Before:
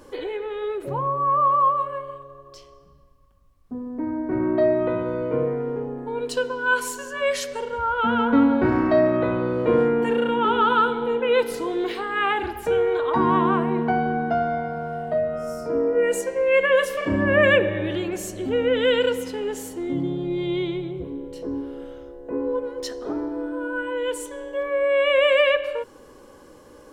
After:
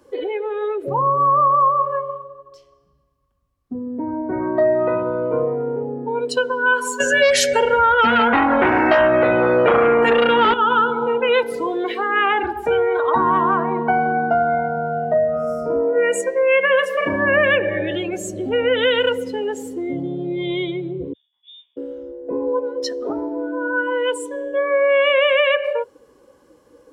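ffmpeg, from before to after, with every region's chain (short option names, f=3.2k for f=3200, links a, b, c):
-filter_complex "[0:a]asettb=1/sr,asplit=3[a][b][c];[a]atrim=end=7.004[d];[b]atrim=start=7:end=10.54,asetpts=PTS-STARTPTS,afade=t=in:d=0.004:c=qsin,afade=t=out:st=3.536:d=0.004:c=qsin,asuperstop=centerf=1100:order=4:qfactor=2.7,aeval=exprs='0.422*sin(PI/2*2.51*val(0)/0.422)':c=same[e];[c]atrim=start=10.536[f];[d][e]acrossfade=d=0.004:c1=hsin:c2=qsin[g];[g][f]acrossfade=d=0.004:c1=qsin:c2=hsin,asettb=1/sr,asplit=3[h][i][j];[h]atrim=end=21.134[k];[i]atrim=start=21.13:end=21.77,asetpts=PTS-STARTPTS,afade=t=in:d=0.004:c=qsin,afade=t=out:st=0.636:d=0.004:c=qsin,agate=range=-33dB:threshold=-23dB:ratio=3:release=100:detection=peak,highpass=630,lowpass=f=3.3k:t=q:w=0.5098,lowpass=f=3.3k:t=q:w=0.6013,lowpass=f=3.3k:t=q:w=0.9,lowpass=f=3.3k:t=q:w=2.563,afreqshift=-3900[l];[j]atrim=start=21.766[m];[k][l]acrossfade=d=0.004:c1=hsin:c2=qsin[n];[n][m]acrossfade=d=0.004:c1=qsin:c2=hsin,highpass=45,afftdn=nr=16:nf=-32,acrossover=split=120|540[o][p][q];[o]acompressor=threshold=-51dB:ratio=4[r];[p]acompressor=threshold=-36dB:ratio=4[s];[q]acompressor=threshold=-23dB:ratio=4[t];[r][s][t]amix=inputs=3:normalize=0,volume=8.5dB"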